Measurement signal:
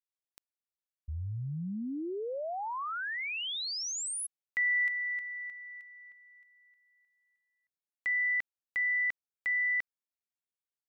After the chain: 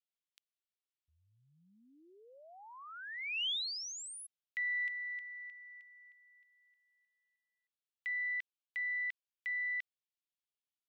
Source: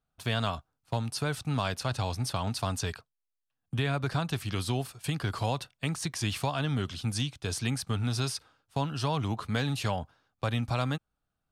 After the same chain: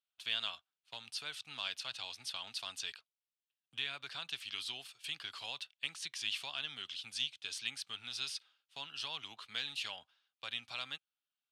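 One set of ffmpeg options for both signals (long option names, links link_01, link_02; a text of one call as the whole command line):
ffmpeg -i in.wav -af "bandpass=frequency=3100:width_type=q:width=2.3:csg=0,crystalizer=i=1:c=0,aeval=exprs='0.112*(cos(1*acos(clip(val(0)/0.112,-1,1)))-cos(1*PI/2))+0.00282*(cos(2*acos(clip(val(0)/0.112,-1,1)))-cos(2*PI/2))+0.00251*(cos(4*acos(clip(val(0)/0.112,-1,1)))-cos(4*PI/2))':channel_layout=same" out.wav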